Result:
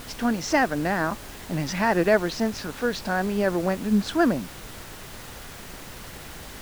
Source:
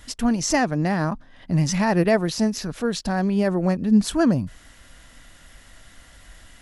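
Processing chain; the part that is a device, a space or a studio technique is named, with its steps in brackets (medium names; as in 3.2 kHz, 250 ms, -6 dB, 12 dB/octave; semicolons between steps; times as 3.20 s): horn gramophone (band-pass 260–4300 Hz; peaking EQ 1.5 kHz +6 dB 0.3 oct; wow and flutter; pink noise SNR 14 dB)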